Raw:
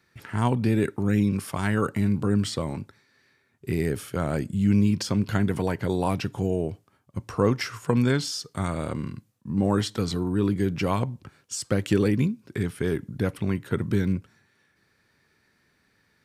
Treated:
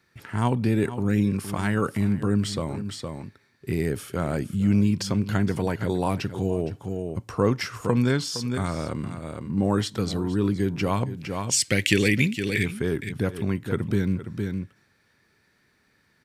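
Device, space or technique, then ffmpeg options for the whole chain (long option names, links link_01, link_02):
ducked delay: -filter_complex "[0:a]asplit=3[link_01][link_02][link_03];[link_01]afade=type=out:start_time=11.16:duration=0.02[link_04];[link_02]highshelf=frequency=1600:width_type=q:width=3:gain=9.5,afade=type=in:start_time=11.16:duration=0.02,afade=type=out:start_time=12.64:duration=0.02[link_05];[link_03]afade=type=in:start_time=12.64:duration=0.02[link_06];[link_04][link_05][link_06]amix=inputs=3:normalize=0,asplit=3[link_07][link_08][link_09];[link_08]adelay=463,volume=-5dB[link_10];[link_09]apad=whole_len=736989[link_11];[link_10][link_11]sidechaincompress=threshold=-40dB:ratio=3:attack=27:release=121[link_12];[link_07][link_12]amix=inputs=2:normalize=0"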